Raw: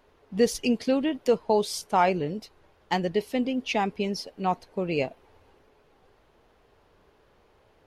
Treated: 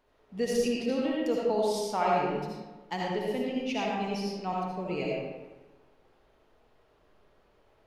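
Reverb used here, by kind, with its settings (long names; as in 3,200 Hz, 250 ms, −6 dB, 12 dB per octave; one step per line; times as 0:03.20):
comb and all-pass reverb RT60 1.2 s, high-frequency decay 0.65×, pre-delay 35 ms, DRR −4 dB
level −9 dB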